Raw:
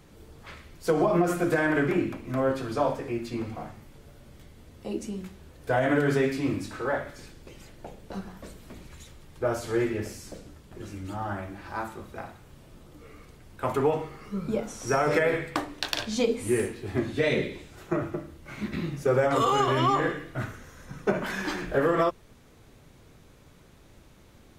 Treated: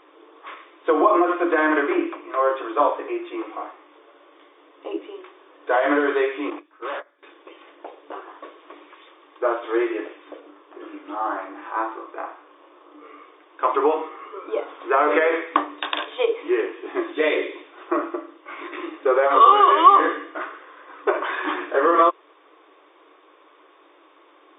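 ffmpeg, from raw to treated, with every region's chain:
-filter_complex "[0:a]asettb=1/sr,asplit=3[a][b][c];[a]atrim=end=6.504[d];[b]atrim=start=6.5:end=7.23,asetpts=PTS-STARTPTS,afade=t=in:d=0.004:c=qsin,afade=t=out:st=0.726:d=0.004:c=qsin,agate=range=-21dB:threshold=-32dB:ratio=16:release=100:detection=peak,volume=33.5dB,asoftclip=hard,volume=-33.5dB[e];[c]atrim=start=7.226[f];[d][e]acrossfade=d=0.004:c1=hsin:c2=qsin[g];[g][f]acrossfade=d=0.004:c1=qsin:c2=hsin,asettb=1/sr,asplit=3[h][i][j];[h]atrim=end=10.404[k];[i]atrim=start=10.4:end=13.08,asetpts=PTS-STARTPTS,afade=t=in:d=0.004:c=qsin,afade=t=out:st=2.676:d=0.004:c=qsin,highshelf=f=4k:g=-9,asplit=2[l][m];[m]adelay=33,volume=-5dB[n];[l][n]amix=inputs=2:normalize=0,atrim=end_sample=118188[o];[j]atrim=start=13.076[p];[k][o]acrossfade=d=0.004:c1=hsin:c2=qsin[q];[q][p]acrossfade=d=0.004:c1=qsin:c2=hsin,afftfilt=real='re*between(b*sr/4096,280,3700)':imag='im*between(b*sr/4096,280,3700)':win_size=4096:overlap=0.75,equalizer=f=1.1k:w=4.6:g=12,volume=4.5dB"

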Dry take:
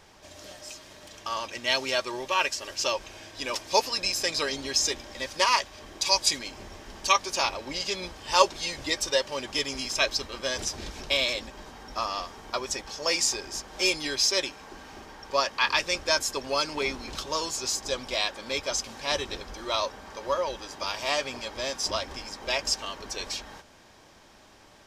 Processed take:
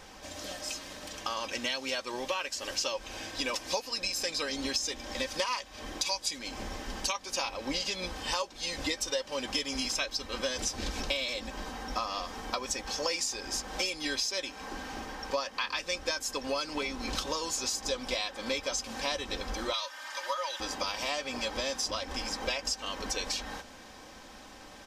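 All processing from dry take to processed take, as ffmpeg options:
-filter_complex "[0:a]asettb=1/sr,asplit=3[a][b][c];[a]atrim=end=19.734[d];[b]atrim=start=19.73:end=20.6,asetpts=PTS-STARTPTS,afade=t=in:d=0.004:c=qsin,afade=t=out:st=0.866:d=0.004:c=qsin,highpass=1.2k,aecho=1:1:3.3:0.87,atrim=end_sample=38367[e];[c]atrim=start=20.596[f];[d][e]acrossfade=d=0.004:c1=hsin:c2=qsin[g];[g][f]acrossfade=d=0.004:c1=qsin:c2=hsin,acompressor=threshold=-34dB:ratio=10,aecho=1:1:3.9:0.48,volume=4dB"

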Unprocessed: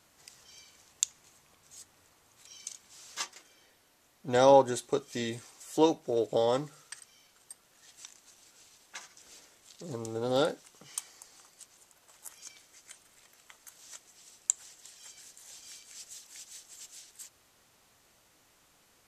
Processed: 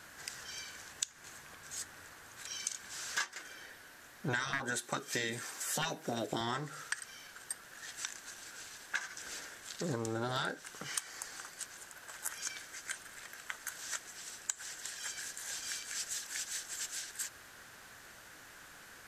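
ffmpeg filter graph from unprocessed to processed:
-filter_complex "[0:a]asettb=1/sr,asplit=3[a][b][c];[a]atrim=end=4.534[d];[b]atrim=start=4.53:end=6.41,asetpts=PTS-STARTPTS,afade=t=in:d=0.004:c=qsin,afade=t=out:st=1.876:d=0.004:c=qsin,highpass=140,highshelf=f=12k:g=8.5,asoftclip=type=hard:threshold=-14.5dB[e];[c]atrim=start=6.406[f];[d][e]acrossfade=d=0.004:c1=hsin:c2=qsin[g];[g][f]acrossfade=d=0.004:c1=qsin:c2=hsin,afftfilt=real='re*lt(hypot(re,im),0.141)':imag='im*lt(hypot(re,im),0.141)':win_size=1024:overlap=0.75,equalizer=f=1.6k:t=o:w=0.49:g=13.5,acompressor=threshold=-40dB:ratio=12,volume=8dB"

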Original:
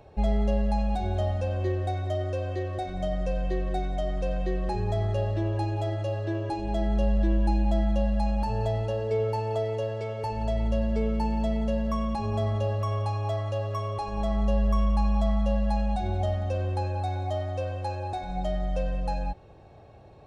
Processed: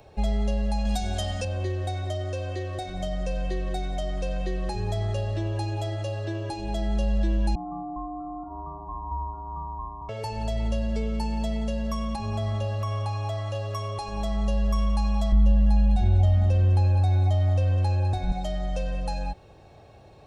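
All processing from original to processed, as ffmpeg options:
-filter_complex "[0:a]asettb=1/sr,asplit=3[a][b][c];[a]atrim=end=0.854[d];[b]atrim=start=0.85:end=1.45,asetpts=PTS-STARTPTS,afade=t=in:d=0.004:c=qsin,afade=t=out:st=0.596:d=0.004:c=qsin,highshelf=f=2.7k:g=10,aecho=1:1:4.2:0.56,atrim=end_sample=26460[e];[c]atrim=start=1.446[f];[d][e]acrossfade=d=0.004:c1=hsin:c2=qsin[g];[g][f]acrossfade=d=0.004:c1=qsin:c2=hsin,asettb=1/sr,asplit=3[h][i][j];[h]atrim=end=7.554[k];[i]atrim=start=7.55:end=10.09,asetpts=PTS-STARTPTS,afade=t=in:d=0.004:c=qsin,afade=t=out:st=2.536:d=0.004:c=qsin,asuperpass=centerf=280:order=12:qfactor=0.64,aeval=exprs='val(0)*sin(2*PI*510*n/s)':c=same[l];[j]atrim=start=10.086[m];[k][l]acrossfade=d=0.004:c1=hsin:c2=qsin[n];[n][m]acrossfade=d=0.004:c1=qsin:c2=hsin,asettb=1/sr,asplit=3[o][p][q];[o]atrim=end=12.164[r];[p]atrim=start=12.16:end=13.55,asetpts=PTS-STARTPTS,afade=t=in:d=0.004:c=qsin,afade=t=out:st=1.386:d=0.004:c=qsin,acrossover=split=3200[s][t];[t]acompressor=threshold=-54dB:ratio=4:attack=1:release=60[u];[s][u]amix=inputs=2:normalize=0,equalizer=f=450:w=6.3:g=-9[v];[q]atrim=start=13.546[w];[r][v]acrossfade=d=0.004:c1=hsin:c2=qsin[x];[x][w]acrossfade=d=0.004:c1=qsin:c2=hsin,asettb=1/sr,asplit=3[y][z][aa];[y]atrim=end=15.324[ab];[z]atrim=start=15.32:end=18.32,asetpts=PTS-STARTPTS,afade=t=in:d=0.004:c=qsin,afade=t=out:st=2.996:d=0.004:c=qsin,bass=f=250:g=14,treble=f=4k:g=-5,aecho=1:1:201:0.224,atrim=end_sample=132300,acompressor=threshold=-18dB:ratio=2:attack=3.2:release=140:knee=1:detection=peak[ac];[aa]atrim=start=18.316[ad];[ab][ac]acrossfade=d=0.004:c1=hsin:c2=qsin[ae];[ae][ad]acrossfade=d=0.004:c1=qsin:c2=hsin,highshelf=f=2.7k:g=9.5,acrossover=split=190|3000[af][ag][ah];[ag]acompressor=threshold=-31dB:ratio=6[ai];[af][ai][ah]amix=inputs=3:normalize=0"

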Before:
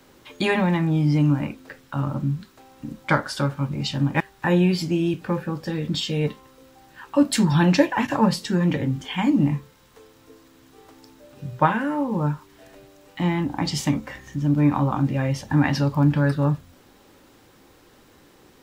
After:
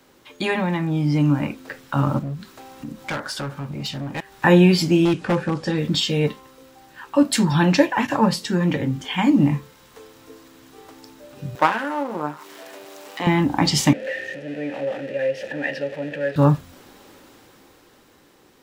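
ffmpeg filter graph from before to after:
-filter_complex "[0:a]asettb=1/sr,asplit=3[a][b][c];[a]atrim=end=2.194[d];[b]atrim=start=2.19:end=4.32,asetpts=PTS-STARTPTS,afade=t=in:d=0.004:c=qsin,afade=t=out:st=2.126:d=0.004:c=qsin,acompressor=threshold=-44dB:ratio=1.5:attack=3.2:release=140:knee=1:detection=peak,asoftclip=type=hard:threshold=-30dB[e];[c]atrim=start=4.316[f];[d][e]acrossfade=d=0.004:c1=hsin:c2=qsin[g];[g][f]acrossfade=d=0.004:c1=qsin:c2=hsin,asettb=1/sr,asplit=3[h][i][j];[h]atrim=end=5.054[k];[i]atrim=start=5.05:end=5.78,asetpts=PTS-STARTPTS,afade=t=in:d=0.004:c=qsin,afade=t=out:st=0.726:d=0.004:c=qsin,lowpass=f=9.6k:w=0.5412,lowpass=f=9.6k:w=1.3066,aeval=exprs='0.126*(abs(mod(val(0)/0.126+3,4)-2)-1)':c=same[l];[j]atrim=start=5.776[m];[k][l]acrossfade=d=0.004:c1=hsin:c2=qsin[n];[n][m]acrossfade=d=0.004:c1=qsin:c2=hsin,asettb=1/sr,asplit=3[o][p][q];[o]atrim=end=11.554[r];[p]atrim=start=11.55:end=13.27,asetpts=PTS-STARTPTS,afade=t=in:d=0.004:c=qsin,afade=t=out:st=1.716:d=0.004:c=qsin,aeval=exprs='if(lt(val(0),0),0.251*val(0),val(0))':c=same,highpass=330,acompressor=mode=upward:threshold=-35dB:ratio=2.5:attack=3.2:release=140:knee=2.83:detection=peak[s];[q]atrim=start=13.266[t];[r][s]acrossfade=d=0.004:c1=hsin:c2=qsin[u];[u][t]acrossfade=d=0.004:c1=qsin:c2=hsin,asettb=1/sr,asplit=3[v][w][x];[v]atrim=end=13.934[y];[w]atrim=start=13.93:end=16.36,asetpts=PTS-STARTPTS,afade=t=in:d=0.004:c=qsin,afade=t=out:st=2.426:d=0.004:c=qsin,aeval=exprs='val(0)+0.5*0.0708*sgn(val(0))':c=same,asplit=3[z][aa][ab];[z]bandpass=f=530:t=q:w=8,volume=0dB[ac];[aa]bandpass=f=1.84k:t=q:w=8,volume=-6dB[ad];[ab]bandpass=f=2.48k:t=q:w=8,volume=-9dB[ae];[ac][ad][ae]amix=inputs=3:normalize=0[af];[x]atrim=start=16.356[ag];[y][af]acrossfade=d=0.004:c1=hsin:c2=qsin[ah];[ah][ag]acrossfade=d=0.004:c1=qsin:c2=hsin,lowshelf=f=140:g=-6.5,dynaudnorm=f=180:g=17:m=11.5dB,volume=-1dB"

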